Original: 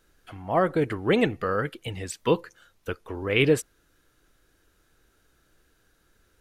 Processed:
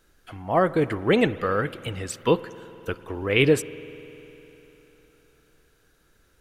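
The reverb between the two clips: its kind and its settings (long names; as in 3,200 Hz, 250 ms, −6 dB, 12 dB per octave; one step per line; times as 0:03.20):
spring reverb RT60 3.7 s, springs 50 ms, chirp 35 ms, DRR 16 dB
level +2 dB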